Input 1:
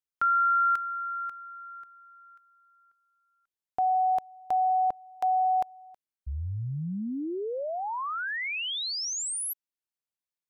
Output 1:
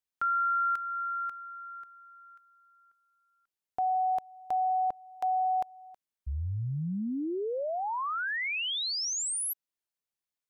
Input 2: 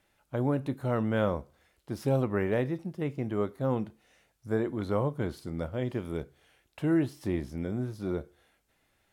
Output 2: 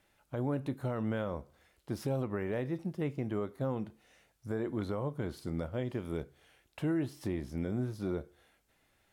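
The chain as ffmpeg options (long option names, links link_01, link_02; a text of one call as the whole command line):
ffmpeg -i in.wav -af "alimiter=level_in=0.5dB:limit=-24dB:level=0:latency=1:release=242,volume=-0.5dB" out.wav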